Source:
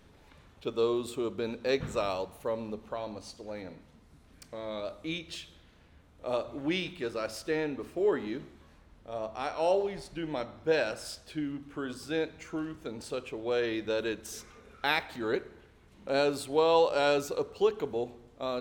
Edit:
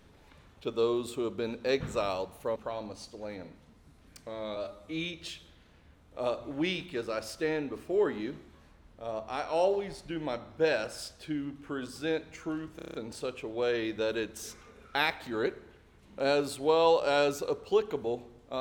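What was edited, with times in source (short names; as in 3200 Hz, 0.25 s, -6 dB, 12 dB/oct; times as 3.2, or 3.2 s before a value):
2.56–2.82 cut
4.82–5.2 stretch 1.5×
12.83 stutter 0.03 s, 7 plays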